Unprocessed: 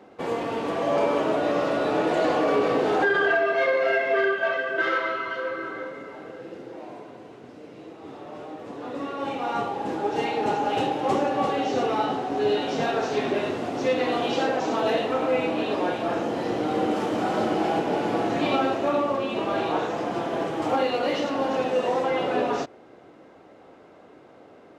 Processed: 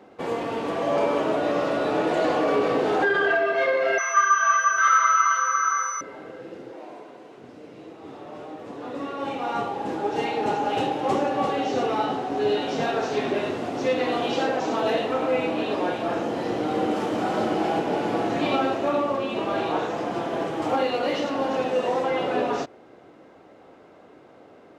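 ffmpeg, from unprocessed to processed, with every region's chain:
-filter_complex "[0:a]asettb=1/sr,asplit=3[a][b][c];[a]atrim=end=3.984[d];[b]atrim=start=3.98:end=6.01,asetpts=PTS-STARTPTS,afade=t=in:d=0.004:c=qsin,afade=t=out:st=2.026:d=0.004:c=qsin,acompressor=threshold=-28dB:ratio=2:attack=3.2:release=140:knee=1:detection=peak,highpass=f=1.2k:t=q:w=11,aeval=exprs='val(0)+0.0282*sin(2*PI*6000*n/s)':c=same[e];[c]atrim=start=6.006[f];[d][e]acrossfade=d=0.004:c1=hsin:c2=qsin[g];[g][f]acrossfade=d=0.004:c1=qsin:c2=hsin,asettb=1/sr,asplit=3[h][i][j];[h]atrim=end=6.714[k];[i]atrim=start=6.71:end=7.38,asetpts=PTS-STARTPTS,afade=t=in:d=0.004:c=qsin,afade=t=out:st=0.666:d=0.004:c=qsin,highpass=f=150:w=0.5412,highpass=f=150:w=1.3066,equalizer=f=190:w=1.3:g=-5.5[l];[j]atrim=start=7.376[m];[k][l]acrossfade=d=0.004:c1=hsin:c2=qsin[n];[n][m]acrossfade=d=0.004:c1=qsin:c2=hsin"

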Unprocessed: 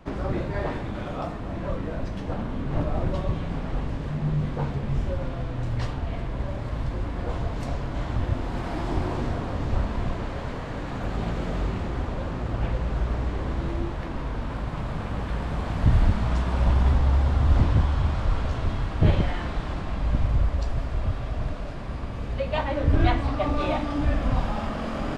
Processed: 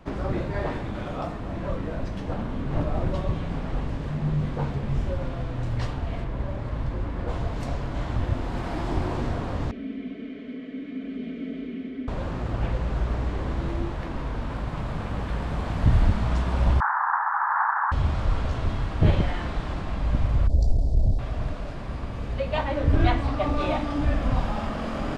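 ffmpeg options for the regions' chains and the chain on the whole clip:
-filter_complex "[0:a]asettb=1/sr,asplit=3[a][b][c];[a]atrim=end=6.244[d];[b]atrim=start=6.24:end=7.28,asetpts=PTS-STARTPTS,afade=t=in:d=0.004:c=qsin,afade=t=out:st=1.036:d=0.004:c=qsin,highshelf=f=3.7k:g=-7,bandreject=f=720:w=21[e];[c]atrim=start=7.276[f];[d][e]acrossfade=d=0.004:c1=hsin:c2=qsin[g];[g][f]acrossfade=d=0.004:c1=qsin:c2=hsin,asettb=1/sr,asplit=3[h][i][j];[h]atrim=end=9.714[k];[i]atrim=start=9.71:end=12.08,asetpts=PTS-STARTPTS,afade=t=in:d=0.004:c=qsin,afade=t=out:st=2.366:d=0.004:c=qsin,asplit=3[l][m][n];[l]bandpass=f=270:t=q:w=8,volume=0dB[o];[m]bandpass=f=2.29k:t=q:w=8,volume=-6dB[p];[n]bandpass=f=3.01k:t=q:w=8,volume=-9dB[q];[o][p][q]amix=inputs=3:normalize=0,equalizer=f=590:t=o:w=2:g=13,aecho=1:1:4.6:0.94,atrim=end_sample=104517[r];[j]atrim=start=12.076[s];[k][r]acrossfade=d=0.004:c1=hsin:c2=qsin[t];[t][s]acrossfade=d=0.004:c1=qsin:c2=hsin,asettb=1/sr,asplit=3[u][v][w];[u]atrim=end=16.804[x];[v]atrim=start=16.8:end=17.92,asetpts=PTS-STARTPTS,afade=t=in:d=0.004:c=qsin,afade=t=out:st=1.116:d=0.004:c=qsin,aeval=exprs='0.355*sin(PI/2*5.01*val(0)/0.355)':c=same,asuperpass=centerf=1200:order=12:qfactor=1.3[y];[w]atrim=start=17.916[z];[x][y]acrossfade=d=0.004:c1=hsin:c2=qsin[aa];[aa][z]acrossfade=d=0.004:c1=qsin:c2=hsin,asettb=1/sr,asplit=3[ab][ac][ad];[ab]atrim=end=20.474[ae];[ac]atrim=start=20.47:end=21.19,asetpts=PTS-STARTPTS,afade=t=in:d=0.004:c=qsin,afade=t=out:st=0.716:d=0.004:c=qsin,lowshelf=f=89:g=10,aeval=exprs='clip(val(0),-1,0.126)':c=same,asuperstop=centerf=1800:order=8:qfactor=0.51[af];[ad]atrim=start=21.186[ag];[ae][af]acrossfade=d=0.004:c1=hsin:c2=qsin[ah];[ah][ag]acrossfade=d=0.004:c1=qsin:c2=hsin"

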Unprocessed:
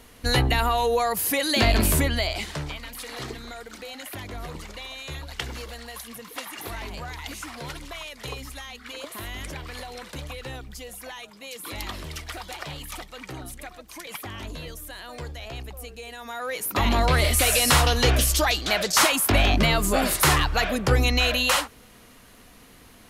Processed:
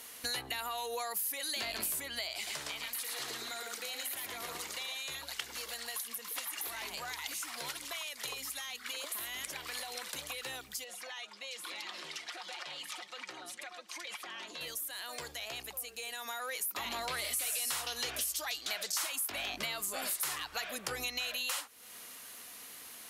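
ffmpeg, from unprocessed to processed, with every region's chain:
-filter_complex "[0:a]asettb=1/sr,asplit=3[a][b][c];[a]atrim=end=2.354[d];[b]atrim=start=2.35:end=4.98,asetpts=PTS-STARTPTS,afade=t=in:d=0.004:c=qsin,afade=t=out:st=2.626:d=0.004:c=qsin,bandreject=f=50:t=h:w=6,bandreject=f=100:t=h:w=6,bandreject=f=150:t=h:w=6,bandreject=f=200:t=h:w=6,bandreject=f=250:t=h:w=6,bandreject=f=300:t=h:w=6,bandreject=f=350:t=h:w=6,aecho=1:1:113:0.596,atrim=end_sample=115983[e];[c]atrim=start=4.976[f];[d][e]acrossfade=d=0.004:c1=hsin:c2=qsin[g];[g][f]acrossfade=d=0.004:c1=qsin:c2=hsin,asettb=1/sr,asplit=3[h][i][j];[h]atrim=end=10.844[k];[i]atrim=start=10.84:end=14.61,asetpts=PTS-STARTPTS,afade=t=in:d=0.004:c=qsin,afade=t=out:st=3.766:d=0.004:c=qsin,highpass=220,lowpass=4.9k,aecho=1:1:5.6:0.44,atrim=end_sample=166257,acompressor=threshold=-39dB:ratio=4:attack=3.2:release=140:knee=1:detection=peak[l];[j]atrim=start=14.606[m];[k][l]acrossfade=d=0.004:c1=hsin:c2=qsin[n];[n][m]acrossfade=d=0.004:c1=qsin:c2=hsin,highpass=f=900:p=1,aemphasis=mode=production:type=cd,acompressor=threshold=-37dB:ratio=4"

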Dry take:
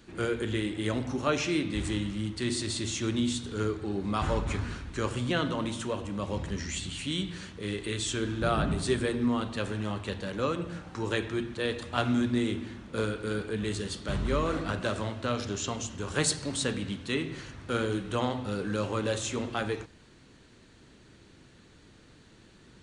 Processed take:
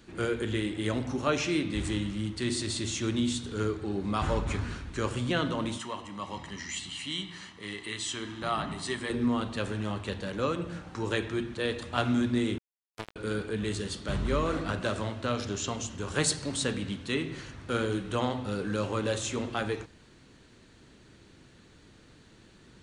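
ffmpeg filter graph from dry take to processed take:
-filter_complex "[0:a]asettb=1/sr,asplit=3[a][b][c];[a]atrim=end=5.784[d];[b]atrim=start=5.78:end=9.1,asetpts=PTS-STARTPTS,afade=t=in:d=0.004:c=qsin,afade=t=out:st=3.316:d=0.004:c=qsin,highpass=f=560:p=1,highshelf=f=9.2k:g=-9,aecho=1:1:1:0.54,atrim=end_sample=146412[e];[c]atrim=start=9.096[f];[d][e]acrossfade=d=0.004:c1=hsin:c2=qsin[g];[g][f]acrossfade=d=0.004:c1=qsin:c2=hsin,asettb=1/sr,asplit=3[h][i][j];[h]atrim=end=12.584[k];[i]atrim=start=12.58:end=13.16,asetpts=PTS-STARTPTS,afade=t=in:d=0.004:c=qsin,afade=t=out:st=0.576:d=0.004:c=qsin,aecho=1:1:2.3:0.78,atrim=end_sample=25578,acrusher=bits=2:mix=0:aa=0.5[l];[j]atrim=start=13.156[m];[k][l]acrossfade=d=0.004:c1=hsin:c2=qsin[n];[n][m]acrossfade=d=0.004:c1=qsin:c2=hsin"

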